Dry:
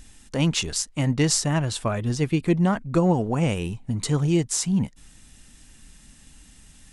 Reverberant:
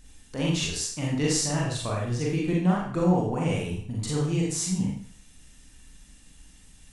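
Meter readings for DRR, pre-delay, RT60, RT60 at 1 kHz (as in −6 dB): −4.0 dB, 35 ms, 0.55 s, 0.55 s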